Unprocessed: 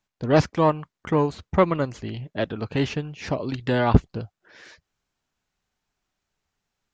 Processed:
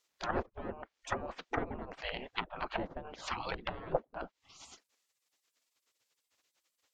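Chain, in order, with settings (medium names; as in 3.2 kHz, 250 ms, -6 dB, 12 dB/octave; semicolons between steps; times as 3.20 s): spectral gate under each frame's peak -20 dB weak; low-pass that closes with the level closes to 460 Hz, closed at -36.5 dBFS; trim +9 dB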